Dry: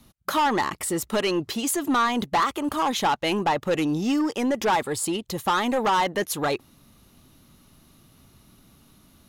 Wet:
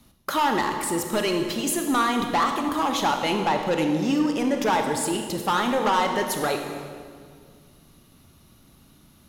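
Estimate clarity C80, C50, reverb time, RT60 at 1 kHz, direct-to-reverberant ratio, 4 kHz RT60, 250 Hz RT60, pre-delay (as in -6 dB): 6.5 dB, 5.0 dB, 1.9 s, 1.8 s, 4.0 dB, 1.6 s, 2.5 s, 26 ms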